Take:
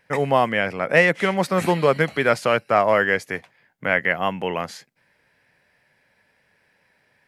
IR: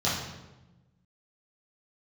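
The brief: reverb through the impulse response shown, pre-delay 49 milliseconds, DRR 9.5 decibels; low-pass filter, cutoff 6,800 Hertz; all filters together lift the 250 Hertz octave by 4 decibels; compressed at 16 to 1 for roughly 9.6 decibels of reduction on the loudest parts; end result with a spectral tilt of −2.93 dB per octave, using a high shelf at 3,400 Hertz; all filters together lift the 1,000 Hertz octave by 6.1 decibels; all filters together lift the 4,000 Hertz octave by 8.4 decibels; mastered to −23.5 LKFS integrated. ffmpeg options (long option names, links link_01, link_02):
-filter_complex "[0:a]lowpass=6800,equalizer=frequency=250:width_type=o:gain=5.5,equalizer=frequency=1000:width_type=o:gain=6.5,highshelf=frequency=3400:gain=8,equalizer=frequency=4000:width_type=o:gain=6.5,acompressor=threshold=-16dB:ratio=16,asplit=2[link_01][link_02];[1:a]atrim=start_sample=2205,adelay=49[link_03];[link_02][link_03]afir=irnorm=-1:irlink=0,volume=-21.5dB[link_04];[link_01][link_04]amix=inputs=2:normalize=0,volume=-1.5dB"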